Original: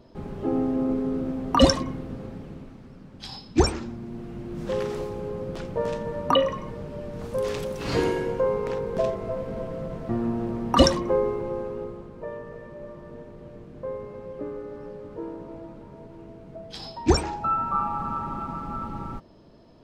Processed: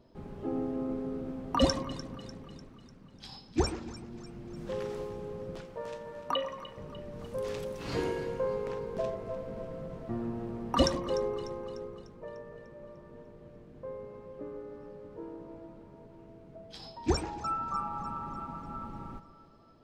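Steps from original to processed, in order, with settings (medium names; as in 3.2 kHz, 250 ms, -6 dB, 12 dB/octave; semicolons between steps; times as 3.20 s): 5.60–6.77 s: bass shelf 420 Hz -11 dB; two-band feedback delay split 1.1 kHz, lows 139 ms, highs 298 ms, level -14 dB; trim -8.5 dB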